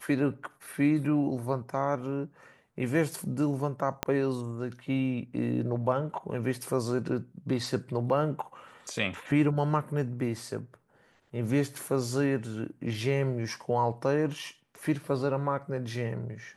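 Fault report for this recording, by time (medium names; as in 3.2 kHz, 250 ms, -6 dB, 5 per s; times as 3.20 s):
4.03 s: pop -11 dBFS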